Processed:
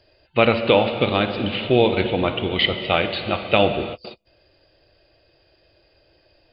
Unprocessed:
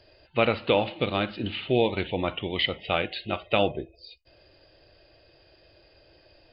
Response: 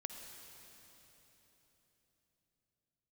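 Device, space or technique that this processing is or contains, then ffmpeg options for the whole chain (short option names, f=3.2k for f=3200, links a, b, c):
keyed gated reverb: -filter_complex "[0:a]asplit=3[a][b][c];[1:a]atrim=start_sample=2205[d];[b][d]afir=irnorm=-1:irlink=0[e];[c]apad=whole_len=287882[f];[e][f]sidechaingate=range=-45dB:threshold=-45dB:ratio=16:detection=peak,volume=7dB[g];[a][g]amix=inputs=2:normalize=0,volume=-1.5dB"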